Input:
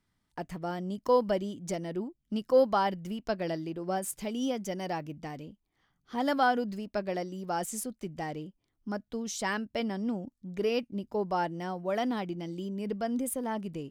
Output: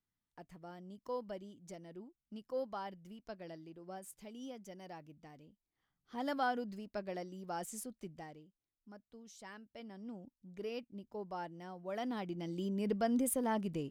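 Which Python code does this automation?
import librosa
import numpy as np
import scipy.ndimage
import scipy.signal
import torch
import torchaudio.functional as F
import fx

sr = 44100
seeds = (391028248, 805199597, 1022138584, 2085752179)

y = fx.gain(x, sr, db=fx.line((5.41, -16.0), (6.24, -9.0), (8.07, -9.0), (8.47, -20.0), (9.69, -20.0), (10.24, -13.0), (11.71, -13.0), (12.68, -1.0)))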